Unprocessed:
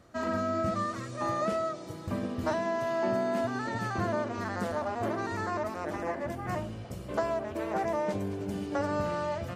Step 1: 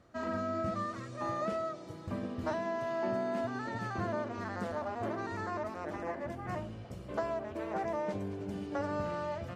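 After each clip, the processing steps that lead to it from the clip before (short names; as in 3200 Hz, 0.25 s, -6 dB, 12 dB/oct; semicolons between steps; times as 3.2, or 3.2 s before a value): high shelf 8100 Hz -11 dB; gain -4.5 dB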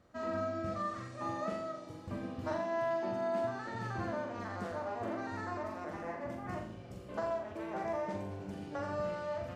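flutter echo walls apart 7.2 m, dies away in 0.5 s; gain -3.5 dB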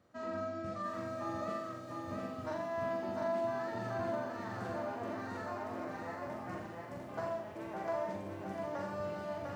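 HPF 89 Hz; lo-fi delay 0.7 s, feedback 35%, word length 11-bit, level -3 dB; gain -3 dB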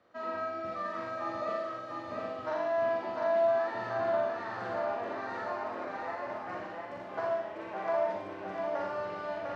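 three-band isolator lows -13 dB, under 350 Hz, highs -22 dB, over 4900 Hz; on a send: flutter echo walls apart 10 m, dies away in 0.61 s; on the sum: gain +5 dB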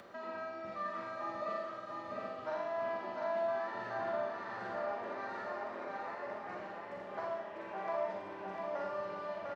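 on a send at -8 dB: reverb RT60 5.7 s, pre-delay 44 ms; on the sum: upward compressor, threshold -36 dBFS; comb 5.1 ms, depth 36%; gain -5.5 dB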